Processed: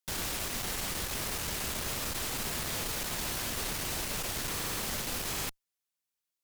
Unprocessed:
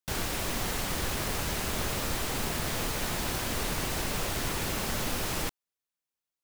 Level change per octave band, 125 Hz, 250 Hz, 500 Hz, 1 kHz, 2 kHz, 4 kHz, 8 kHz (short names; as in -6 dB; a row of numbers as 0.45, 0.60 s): -6.5, -6.0, -6.0, -5.0, -3.5, -1.5, 0.0 dB